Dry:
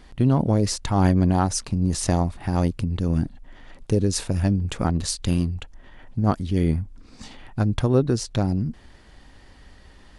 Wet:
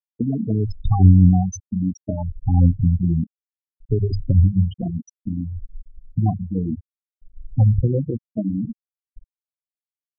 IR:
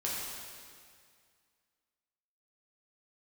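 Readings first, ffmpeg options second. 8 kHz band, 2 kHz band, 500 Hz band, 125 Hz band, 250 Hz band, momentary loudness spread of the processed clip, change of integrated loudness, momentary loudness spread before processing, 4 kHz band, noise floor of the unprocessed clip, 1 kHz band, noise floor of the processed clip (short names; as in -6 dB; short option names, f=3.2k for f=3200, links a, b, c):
under -10 dB, under -40 dB, -5.0 dB, +4.5 dB, +1.0 dB, 14 LU, +3.0 dB, 8 LU, under -15 dB, -50 dBFS, -5.5 dB, under -85 dBFS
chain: -filter_complex "[0:a]afftfilt=real='re*pow(10,20/40*sin(2*PI*(1.9*log(max(b,1)*sr/1024/100)/log(2)-(-0.61)*(pts-256)/sr)))':imag='im*pow(10,20/40*sin(2*PI*(1.9*log(max(b,1)*sr/1024/100)/log(2)-(-0.61)*(pts-256)/sr)))':win_size=1024:overlap=0.75,acrossover=split=200[a][b];[b]acompressor=threshold=-27dB:ratio=3[c];[a][c]amix=inputs=2:normalize=0,bandreject=f=50:t=h:w=6,bandreject=f=100:t=h:w=6,bandreject=f=150:t=h:w=6,bandreject=f=200:t=h:w=6,bandreject=f=250:t=h:w=6,bandreject=f=300:t=h:w=6,bandreject=f=350:t=h:w=6,bandreject=f=400:t=h:w=6,asplit=2[d][e];[e]adelay=483,lowpass=f=2k:p=1,volume=-24dB,asplit=2[f][g];[g]adelay=483,lowpass=f=2k:p=1,volume=0.48,asplit=2[h][i];[i]adelay=483,lowpass=f=2k:p=1,volume=0.48[j];[f][h][j]amix=inputs=3:normalize=0[k];[d][k]amix=inputs=2:normalize=0,afftfilt=real='re*gte(hypot(re,im),0.251)':imag='im*gte(hypot(re,im),0.251)':win_size=1024:overlap=0.75,volume=2dB"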